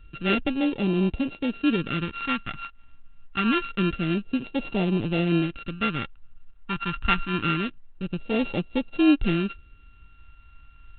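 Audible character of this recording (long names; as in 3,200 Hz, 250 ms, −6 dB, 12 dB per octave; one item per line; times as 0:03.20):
a buzz of ramps at a fixed pitch in blocks of 32 samples
phaser sweep stages 2, 0.26 Hz, lowest notch 480–1,300 Hz
G.726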